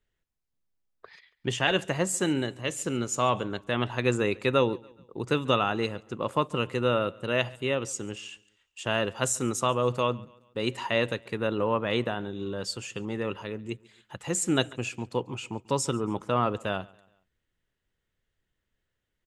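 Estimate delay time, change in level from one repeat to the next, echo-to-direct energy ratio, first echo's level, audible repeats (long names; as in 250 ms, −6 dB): 140 ms, −7.0 dB, −23.0 dB, −24.0 dB, 2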